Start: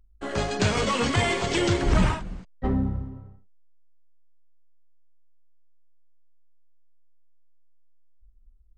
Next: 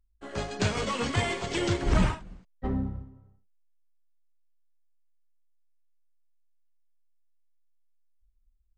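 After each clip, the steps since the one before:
expander for the loud parts 1.5 to 1, over −38 dBFS
level −2 dB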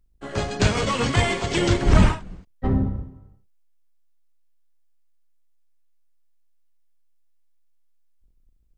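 sub-octave generator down 1 octave, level −3 dB
level +6.5 dB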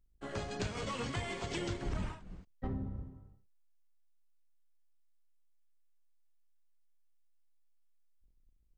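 downward compressor 4 to 1, threshold −28 dBFS, peak gain reduction 15.5 dB
level −8 dB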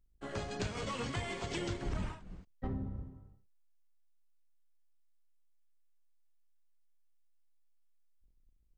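no processing that can be heard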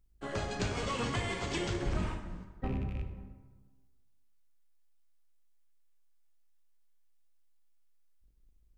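loose part that buzzes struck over −37 dBFS, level −43 dBFS
dense smooth reverb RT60 1.4 s, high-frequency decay 0.6×, DRR 4.5 dB
level +3 dB

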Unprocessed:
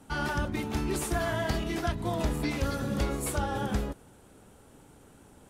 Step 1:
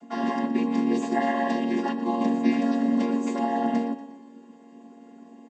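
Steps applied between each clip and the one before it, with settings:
channel vocoder with a chord as carrier minor triad, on A#3
comb filter 4.7 ms, depth 89%
repeating echo 119 ms, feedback 50%, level −13.5 dB
level +5 dB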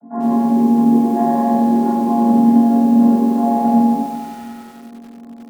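Bessel low-pass filter 770 Hz, order 6
convolution reverb RT60 0.65 s, pre-delay 8 ms, DRR −6.5 dB
feedback echo at a low word length 95 ms, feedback 80%, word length 6 bits, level −9 dB
level −1 dB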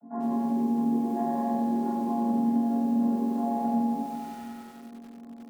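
downward compressor 1.5 to 1, threshold −24 dBFS, peak gain reduction 6 dB
level −8 dB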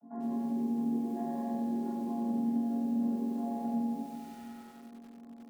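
dynamic equaliser 1,000 Hz, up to −7 dB, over −46 dBFS, Q 1.2
level −5.5 dB

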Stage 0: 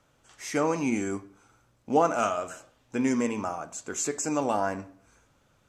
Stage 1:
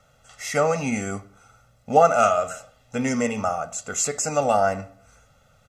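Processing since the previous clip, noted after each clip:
comb filter 1.5 ms, depth 97%
level +3.5 dB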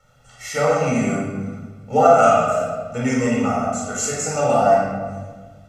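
rectangular room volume 1,400 cubic metres, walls mixed, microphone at 4.4 metres
level −5 dB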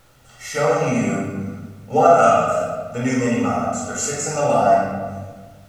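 background noise pink −56 dBFS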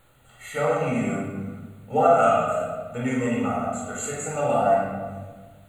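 Butterworth band-reject 5,400 Hz, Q 1.8
level −5 dB

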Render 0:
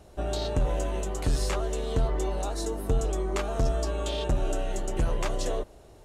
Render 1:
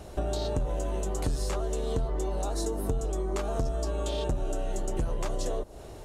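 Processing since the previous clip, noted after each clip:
dynamic equaliser 2,300 Hz, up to −6 dB, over −52 dBFS, Q 0.79
downward compressor 6 to 1, threshold −35 dBFS, peak gain reduction 13.5 dB
level +8 dB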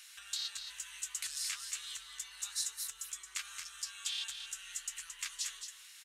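inverse Chebyshev high-pass filter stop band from 700 Hz, stop band 50 dB
single-tap delay 222 ms −7.5 dB
level +3.5 dB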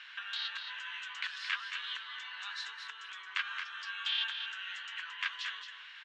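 loudspeaker in its box 430–3,300 Hz, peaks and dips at 1,000 Hz +8 dB, 1,600 Hz +9 dB, 3,100 Hz +4 dB
level +6.5 dB

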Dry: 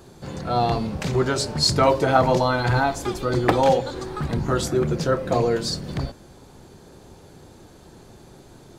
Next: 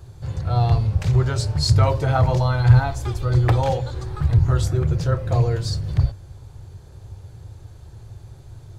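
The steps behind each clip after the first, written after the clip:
low shelf with overshoot 150 Hz +12.5 dB, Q 3
level −4.5 dB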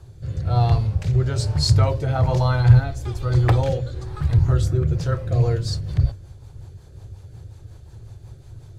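rotating-speaker cabinet horn 1.1 Hz, later 5.5 Hz, at 0:04.92
level +1 dB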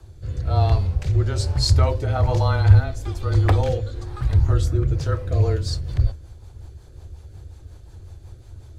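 frequency shifter −20 Hz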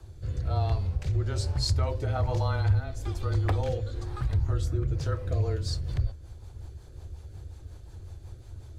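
downward compressor 2 to 1, threshold −25 dBFS, peak gain reduction 10.5 dB
level −2.5 dB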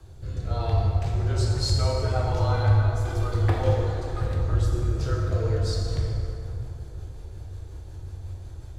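dense smooth reverb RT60 3 s, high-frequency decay 0.55×, DRR −3 dB

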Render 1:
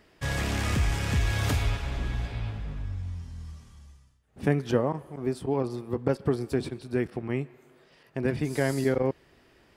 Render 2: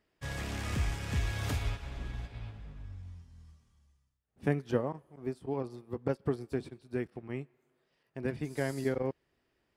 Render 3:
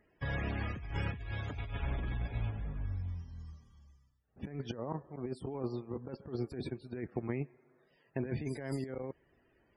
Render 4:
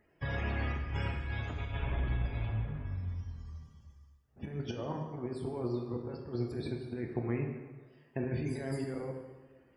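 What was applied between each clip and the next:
expander for the loud parts 1.5 to 1, over −45 dBFS; level −4.5 dB
spectral peaks only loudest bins 64; compressor whose output falls as the input rises −40 dBFS, ratio −1; level +2.5 dB
dense smooth reverb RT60 1.3 s, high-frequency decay 0.8×, DRR 1.5 dB

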